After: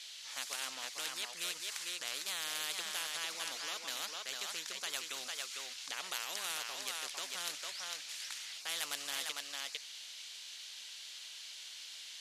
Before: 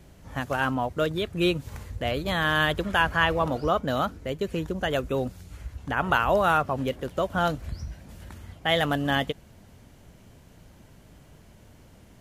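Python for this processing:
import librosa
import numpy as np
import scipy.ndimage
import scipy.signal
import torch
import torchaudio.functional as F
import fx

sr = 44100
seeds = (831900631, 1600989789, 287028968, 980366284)

y = fx.ladder_bandpass(x, sr, hz=4400.0, resonance_pct=45)
y = y + 10.0 ** (-7.5 / 20.0) * np.pad(y, (int(452 * sr / 1000.0), 0))[:len(y)]
y = fx.spectral_comp(y, sr, ratio=4.0)
y = y * 10.0 ** (6.0 / 20.0)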